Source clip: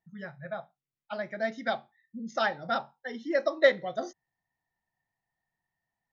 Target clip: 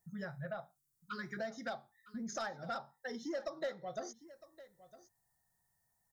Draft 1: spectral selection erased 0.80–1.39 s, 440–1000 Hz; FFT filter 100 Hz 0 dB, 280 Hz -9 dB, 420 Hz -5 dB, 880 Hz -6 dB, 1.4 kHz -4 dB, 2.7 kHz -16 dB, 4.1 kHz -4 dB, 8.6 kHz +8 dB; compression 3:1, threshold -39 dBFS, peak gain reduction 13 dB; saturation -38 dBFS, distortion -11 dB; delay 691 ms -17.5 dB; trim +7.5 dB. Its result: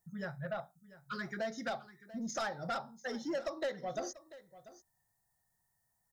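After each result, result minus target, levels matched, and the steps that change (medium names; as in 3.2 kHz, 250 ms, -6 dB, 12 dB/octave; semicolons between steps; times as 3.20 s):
echo 267 ms early; compression: peak gain reduction -5.5 dB
change: delay 958 ms -17.5 dB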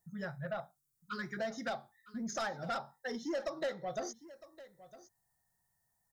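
compression: peak gain reduction -5.5 dB
change: compression 3:1, threshold -47 dBFS, peak gain reduction 18.5 dB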